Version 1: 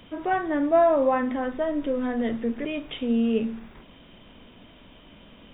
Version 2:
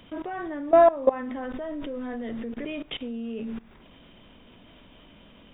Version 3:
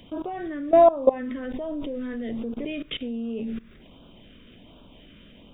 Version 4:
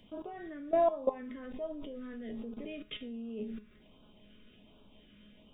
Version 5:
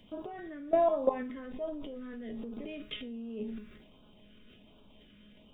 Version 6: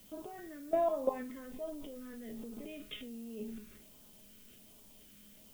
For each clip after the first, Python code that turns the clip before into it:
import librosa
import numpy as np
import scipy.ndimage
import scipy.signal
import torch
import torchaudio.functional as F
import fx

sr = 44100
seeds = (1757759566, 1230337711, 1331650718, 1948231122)

y1 = fx.level_steps(x, sr, step_db=19)
y1 = y1 * librosa.db_to_amplitude(5.0)
y2 = fx.filter_lfo_notch(y1, sr, shape='sine', hz=1.3, low_hz=790.0, high_hz=2000.0, q=0.85)
y2 = y2 * librosa.db_to_amplitude(3.0)
y3 = fx.comb_fb(y2, sr, f0_hz=210.0, decay_s=0.32, harmonics='all', damping=0.0, mix_pct=80)
y4 = fx.transient(y3, sr, attack_db=3, sustain_db=8)
y5 = fx.dmg_noise_colour(y4, sr, seeds[0], colour='blue', level_db=-56.0)
y5 = y5 * librosa.db_to_amplitude(-4.5)